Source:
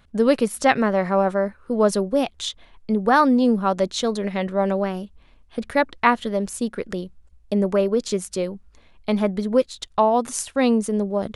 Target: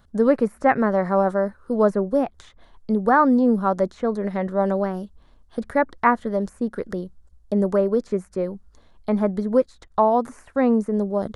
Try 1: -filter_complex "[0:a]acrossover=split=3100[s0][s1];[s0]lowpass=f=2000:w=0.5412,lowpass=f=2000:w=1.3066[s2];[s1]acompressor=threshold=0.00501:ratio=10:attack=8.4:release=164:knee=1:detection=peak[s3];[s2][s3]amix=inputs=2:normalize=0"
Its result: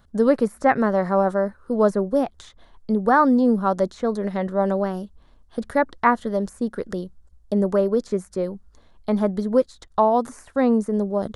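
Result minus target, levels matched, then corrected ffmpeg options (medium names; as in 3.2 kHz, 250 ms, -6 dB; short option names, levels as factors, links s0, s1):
compression: peak gain reduction -6.5 dB
-filter_complex "[0:a]acrossover=split=3100[s0][s1];[s0]lowpass=f=2000:w=0.5412,lowpass=f=2000:w=1.3066[s2];[s1]acompressor=threshold=0.00224:ratio=10:attack=8.4:release=164:knee=1:detection=peak[s3];[s2][s3]amix=inputs=2:normalize=0"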